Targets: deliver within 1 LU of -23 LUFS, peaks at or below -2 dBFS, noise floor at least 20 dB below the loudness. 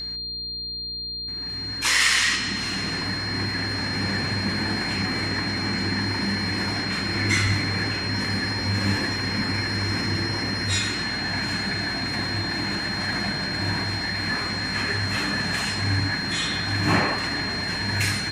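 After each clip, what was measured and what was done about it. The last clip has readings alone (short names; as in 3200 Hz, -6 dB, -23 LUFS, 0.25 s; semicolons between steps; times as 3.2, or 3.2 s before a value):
hum 60 Hz; harmonics up to 480 Hz; hum level -42 dBFS; steady tone 4200 Hz; tone level -29 dBFS; loudness -24.0 LUFS; peak -7.0 dBFS; loudness target -23.0 LUFS
-> de-hum 60 Hz, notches 8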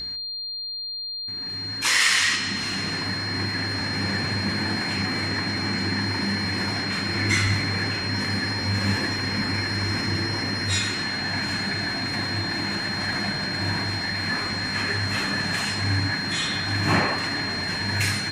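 hum none; steady tone 4200 Hz; tone level -29 dBFS
-> notch 4200 Hz, Q 30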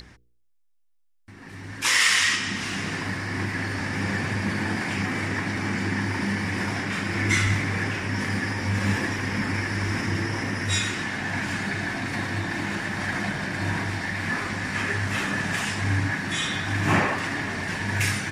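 steady tone none; loudness -25.5 LUFS; peak -7.0 dBFS; loudness target -23.0 LUFS
-> gain +2.5 dB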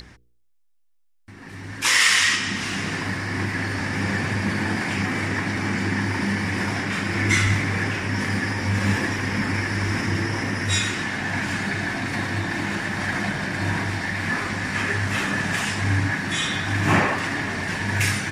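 loudness -23.0 LUFS; peak -4.5 dBFS; noise floor -60 dBFS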